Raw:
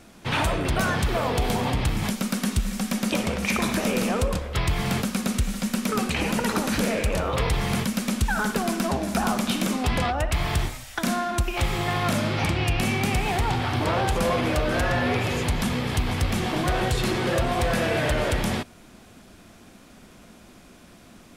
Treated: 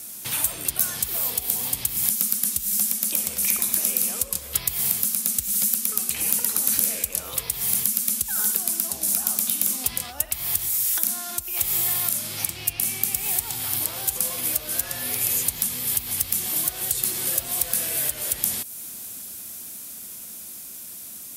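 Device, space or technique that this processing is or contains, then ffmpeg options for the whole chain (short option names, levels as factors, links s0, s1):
FM broadcast chain: -filter_complex "[0:a]highpass=58,dynaudnorm=f=480:g=13:m=1.41,acrossover=split=2800|7800[s0][s1][s2];[s0]acompressor=threshold=0.02:ratio=4[s3];[s1]acompressor=threshold=0.00501:ratio=4[s4];[s2]acompressor=threshold=0.00398:ratio=4[s5];[s3][s4][s5]amix=inputs=3:normalize=0,aemphasis=mode=production:type=75fm,alimiter=limit=0.188:level=0:latency=1:release=350,asoftclip=type=hard:threshold=0.133,lowpass=f=15000:w=0.5412,lowpass=f=15000:w=1.3066,aemphasis=mode=production:type=75fm,volume=0.668"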